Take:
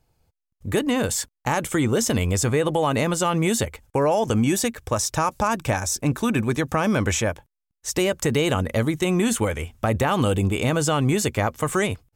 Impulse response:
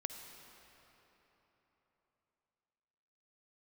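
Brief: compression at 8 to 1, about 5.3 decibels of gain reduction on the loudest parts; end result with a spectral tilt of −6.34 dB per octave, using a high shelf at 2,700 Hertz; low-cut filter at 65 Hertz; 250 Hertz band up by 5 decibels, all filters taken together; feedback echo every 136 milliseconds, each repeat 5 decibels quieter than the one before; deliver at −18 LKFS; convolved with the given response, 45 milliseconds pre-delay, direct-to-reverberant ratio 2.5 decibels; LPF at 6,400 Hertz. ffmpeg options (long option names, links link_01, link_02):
-filter_complex "[0:a]highpass=65,lowpass=6400,equalizer=frequency=250:width_type=o:gain=6.5,highshelf=frequency=2700:gain=-4.5,acompressor=threshold=-18dB:ratio=8,aecho=1:1:136|272|408|544|680|816|952:0.562|0.315|0.176|0.0988|0.0553|0.031|0.0173,asplit=2[link_01][link_02];[1:a]atrim=start_sample=2205,adelay=45[link_03];[link_02][link_03]afir=irnorm=-1:irlink=0,volume=-1.5dB[link_04];[link_01][link_04]amix=inputs=2:normalize=0,volume=3dB"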